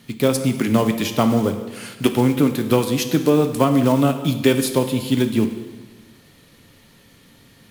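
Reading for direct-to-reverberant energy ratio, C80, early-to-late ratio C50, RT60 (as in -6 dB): 7.0 dB, 11.0 dB, 9.5 dB, 1.3 s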